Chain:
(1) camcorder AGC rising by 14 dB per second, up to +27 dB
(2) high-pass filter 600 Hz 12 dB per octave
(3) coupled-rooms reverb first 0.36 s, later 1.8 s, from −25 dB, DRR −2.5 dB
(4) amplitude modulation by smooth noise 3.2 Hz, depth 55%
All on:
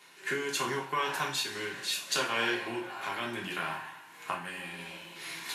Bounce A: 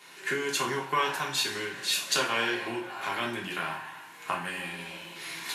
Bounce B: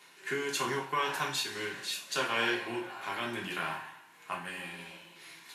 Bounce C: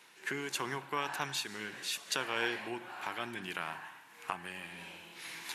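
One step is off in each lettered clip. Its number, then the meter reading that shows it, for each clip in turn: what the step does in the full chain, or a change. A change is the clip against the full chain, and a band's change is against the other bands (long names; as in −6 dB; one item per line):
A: 4, change in momentary loudness spread +1 LU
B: 1, change in momentary loudness spread +6 LU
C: 3, change in crest factor +3.5 dB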